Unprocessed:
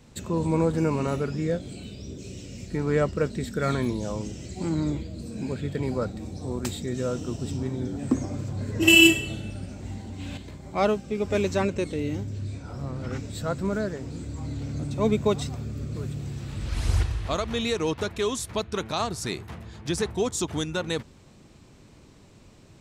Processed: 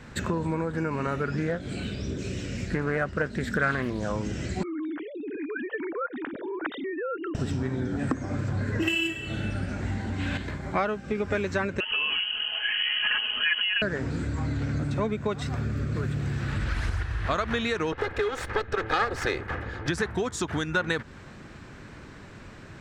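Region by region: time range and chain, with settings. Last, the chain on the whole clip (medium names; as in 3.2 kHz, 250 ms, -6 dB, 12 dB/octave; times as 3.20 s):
1.37–4.08 s: treble shelf 9.8 kHz +4 dB + loudspeaker Doppler distortion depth 0.28 ms
4.63–7.35 s: formants replaced by sine waves + compression, threshold -38 dBFS
11.80–13.82 s: comb 4.9 ms, depth 96% + compression 5:1, threshold -27 dBFS + frequency inversion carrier 3.1 kHz
17.92–19.88 s: comb filter that takes the minimum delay 2.4 ms + low-pass 4 kHz 6 dB/octave + peaking EQ 520 Hz +6.5 dB 0.42 oct
whole clip: compression 20:1, threshold -31 dBFS; low-pass 3.9 kHz 6 dB/octave; peaking EQ 1.6 kHz +13 dB 0.84 oct; trim +6.5 dB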